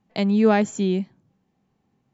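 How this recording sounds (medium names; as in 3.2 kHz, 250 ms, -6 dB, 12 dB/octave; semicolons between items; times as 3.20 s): noise floor -72 dBFS; spectral tilt -6.0 dB/octave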